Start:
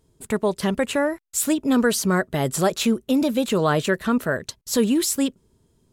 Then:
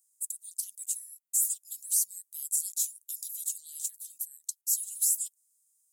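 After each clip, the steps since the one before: inverse Chebyshev high-pass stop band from 1400 Hz, stop band 80 dB; limiter -23 dBFS, peak gain reduction 10 dB; gain +7.5 dB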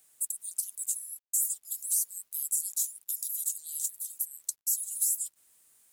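high shelf 5800 Hz +9.5 dB; compressor 2:1, threshold -32 dBFS, peak gain reduction 9.5 dB; bit-crush 11-bit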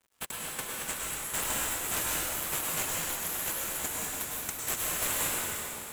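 median filter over 9 samples; reverb RT60 3.3 s, pre-delay 93 ms, DRR -5 dB; gain +5 dB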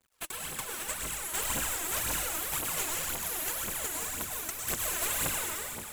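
phaser 1.9 Hz, delay 3.3 ms, feedback 61%; gain -2.5 dB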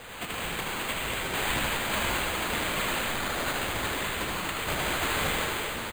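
zero-crossing step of -36 dBFS; sample-and-hold 8×; echo 76 ms -4 dB

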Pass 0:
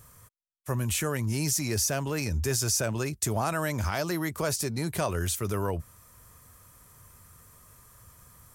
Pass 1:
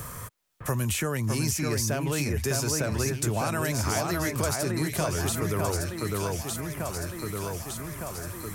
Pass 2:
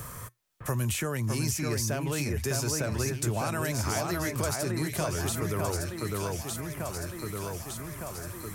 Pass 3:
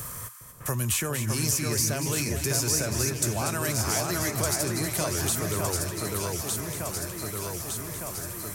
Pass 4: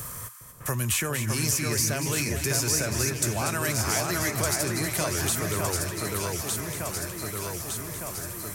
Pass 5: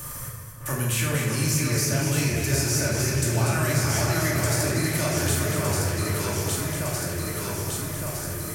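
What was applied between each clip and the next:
echo with dull and thin repeats by turns 0.605 s, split 2300 Hz, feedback 64%, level -3 dB; three-band squash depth 70%
resonator 120 Hz, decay 0.19 s, harmonics odd, mix 30%
high shelf 3600 Hz +8 dB; split-band echo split 980 Hz, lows 0.409 s, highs 0.238 s, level -9 dB
dynamic EQ 2000 Hz, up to +4 dB, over -44 dBFS, Q 1.1
in parallel at +1.5 dB: limiter -20 dBFS, peak gain reduction 8 dB; on the sum: shoebox room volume 800 m³, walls mixed, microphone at 2.5 m; gain -9 dB

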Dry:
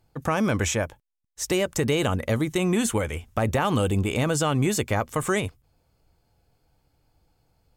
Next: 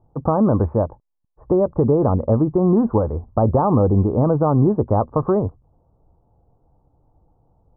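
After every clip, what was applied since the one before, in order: steep low-pass 1100 Hz 48 dB/oct; gain +7.5 dB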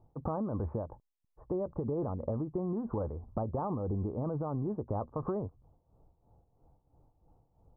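tremolo 3 Hz, depth 73%; limiter -16 dBFS, peak gain reduction 9.5 dB; compressor, threshold -27 dBFS, peak gain reduction 7.5 dB; gain -3.5 dB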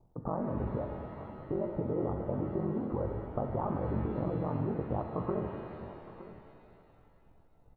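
ring modulator 23 Hz; echo 0.916 s -16.5 dB; shimmer reverb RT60 2.5 s, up +7 st, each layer -8 dB, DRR 4 dB; gain +2.5 dB

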